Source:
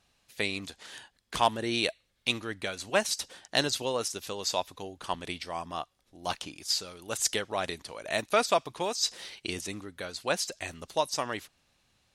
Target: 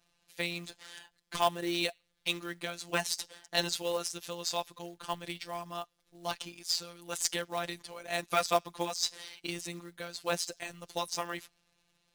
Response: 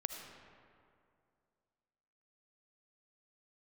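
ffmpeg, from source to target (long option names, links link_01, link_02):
-af "afftfilt=real='hypot(re,im)*cos(PI*b)':imag='0':win_size=1024:overlap=0.75,acrusher=bits=4:mode=log:mix=0:aa=0.000001"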